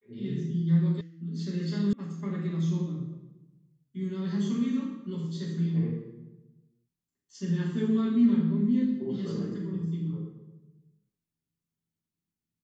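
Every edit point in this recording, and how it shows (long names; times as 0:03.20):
0:01.01: cut off before it has died away
0:01.93: cut off before it has died away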